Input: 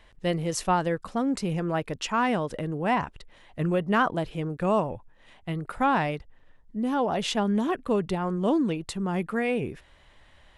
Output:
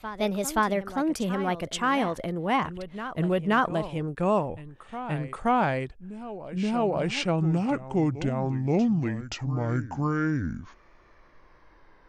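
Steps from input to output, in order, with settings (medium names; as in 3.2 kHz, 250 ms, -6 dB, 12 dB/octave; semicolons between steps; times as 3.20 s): gliding tape speed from 122% -> 53%; vibrato 0.48 Hz 14 cents; reverse echo 526 ms -12.5 dB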